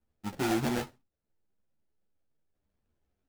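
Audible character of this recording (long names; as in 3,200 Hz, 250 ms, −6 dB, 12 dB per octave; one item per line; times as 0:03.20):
aliases and images of a low sample rate 1,100 Hz, jitter 20%
a shimmering, thickened sound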